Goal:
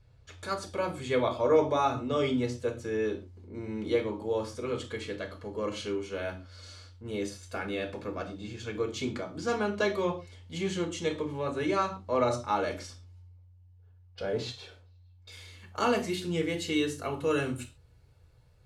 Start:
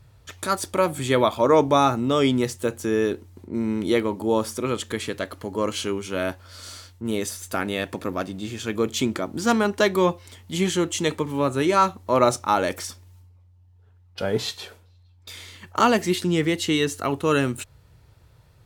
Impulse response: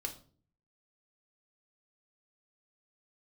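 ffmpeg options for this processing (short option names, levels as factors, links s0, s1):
-filter_complex "[0:a]asetnsamples=n=441:p=0,asendcmd='15.32 lowpass f 12000',lowpass=6300[s0];[1:a]atrim=start_sample=2205,atrim=end_sample=6615[s1];[s0][s1]afir=irnorm=-1:irlink=0,volume=0.398"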